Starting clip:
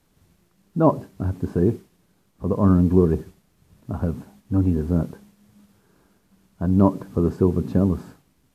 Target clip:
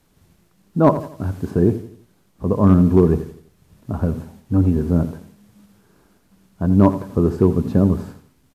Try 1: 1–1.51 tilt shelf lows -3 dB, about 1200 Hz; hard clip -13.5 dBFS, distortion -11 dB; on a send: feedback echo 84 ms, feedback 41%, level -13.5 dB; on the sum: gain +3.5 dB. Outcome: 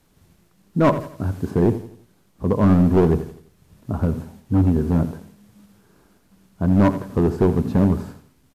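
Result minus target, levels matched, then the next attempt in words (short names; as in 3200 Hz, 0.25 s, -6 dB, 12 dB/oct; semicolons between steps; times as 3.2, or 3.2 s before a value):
hard clip: distortion +16 dB
1–1.51 tilt shelf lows -3 dB, about 1200 Hz; hard clip -6.5 dBFS, distortion -27 dB; on a send: feedback echo 84 ms, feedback 41%, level -13.5 dB; on the sum: gain +3.5 dB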